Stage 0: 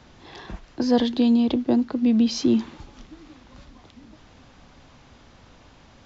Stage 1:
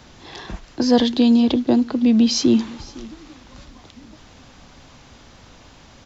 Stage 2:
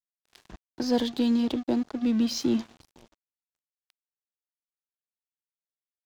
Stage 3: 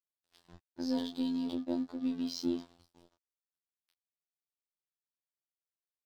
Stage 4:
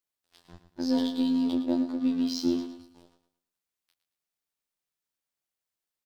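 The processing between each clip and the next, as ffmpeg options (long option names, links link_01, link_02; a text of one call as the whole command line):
ffmpeg -i in.wav -af "highshelf=frequency=5000:gain=9,aecho=1:1:508:0.0891,volume=4dB" out.wav
ffmpeg -i in.wav -af "aeval=exprs='sgn(val(0))*max(abs(val(0))-0.0266,0)':channel_layout=same,volume=-8.5dB" out.wav
ffmpeg -i in.wav -filter_complex "[0:a]afftfilt=real='hypot(re,im)*cos(PI*b)':imag='0':win_size=2048:overlap=0.75,asplit=2[link_01][link_02];[link_02]adelay=23,volume=-5.5dB[link_03];[link_01][link_03]amix=inputs=2:normalize=0,volume=-7.5dB" out.wav
ffmpeg -i in.wav -af "aecho=1:1:112|224|336|448:0.282|0.093|0.0307|0.0101,volume=6dB" out.wav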